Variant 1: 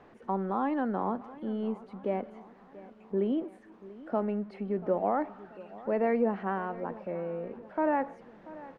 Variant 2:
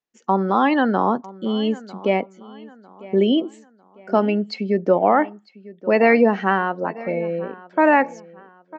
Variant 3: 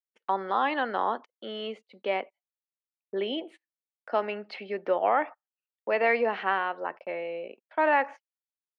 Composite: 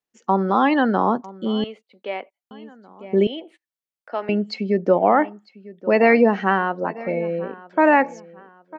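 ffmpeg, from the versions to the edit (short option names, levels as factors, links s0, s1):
-filter_complex "[2:a]asplit=2[s0][s1];[1:a]asplit=3[s2][s3][s4];[s2]atrim=end=1.642[s5];[s0]atrim=start=1.638:end=2.512[s6];[s3]atrim=start=2.508:end=3.272[s7];[s1]atrim=start=3.268:end=4.292[s8];[s4]atrim=start=4.288[s9];[s5][s6]acrossfade=d=0.004:c1=hsin:c2=hsin[s10];[s10][s7]acrossfade=d=0.004:c1=hsin:c2=hsin[s11];[s11][s8]acrossfade=d=0.004:c1=hsin:c2=hsin[s12];[s12][s9]acrossfade=d=0.004:c1=hsin:c2=hsin"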